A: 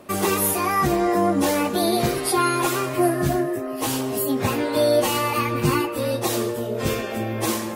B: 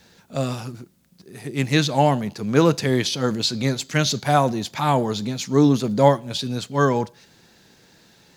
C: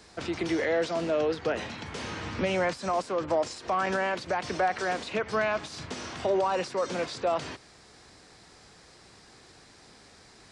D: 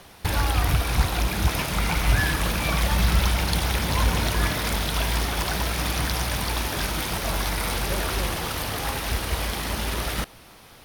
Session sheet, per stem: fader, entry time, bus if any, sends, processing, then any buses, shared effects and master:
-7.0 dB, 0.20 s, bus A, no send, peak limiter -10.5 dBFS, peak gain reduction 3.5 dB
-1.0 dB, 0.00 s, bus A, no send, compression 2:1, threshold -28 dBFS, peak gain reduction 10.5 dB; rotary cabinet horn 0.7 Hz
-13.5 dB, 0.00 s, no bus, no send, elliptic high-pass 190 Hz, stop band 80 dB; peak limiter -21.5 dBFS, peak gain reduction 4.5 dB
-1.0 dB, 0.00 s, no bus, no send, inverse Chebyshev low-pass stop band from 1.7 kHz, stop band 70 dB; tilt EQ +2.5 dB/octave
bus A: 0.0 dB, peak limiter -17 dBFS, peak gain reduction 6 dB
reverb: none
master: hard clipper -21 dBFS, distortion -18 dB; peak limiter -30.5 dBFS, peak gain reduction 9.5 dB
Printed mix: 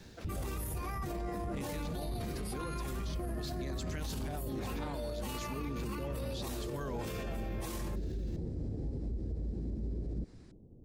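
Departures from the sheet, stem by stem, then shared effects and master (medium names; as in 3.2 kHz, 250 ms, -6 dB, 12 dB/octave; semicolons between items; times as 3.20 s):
stem D: missing tilt EQ +2.5 dB/octave; master: missing hard clipper -21 dBFS, distortion -18 dB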